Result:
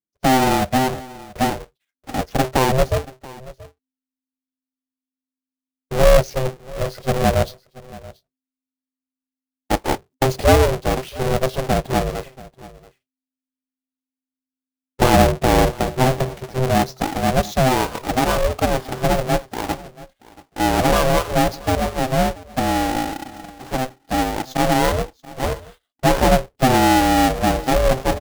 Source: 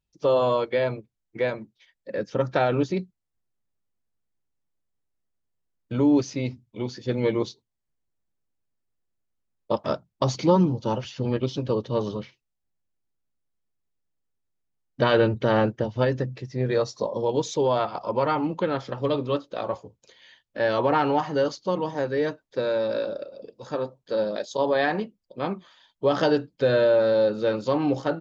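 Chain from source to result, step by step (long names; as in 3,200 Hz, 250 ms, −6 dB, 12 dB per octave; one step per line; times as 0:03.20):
each half-wave held at its own peak
dynamic equaliser 330 Hz, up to +7 dB, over −33 dBFS, Q 1.3
ring modulation 260 Hz
noise gate −49 dBFS, range −21 dB
single-tap delay 681 ms −20.5 dB
level +2 dB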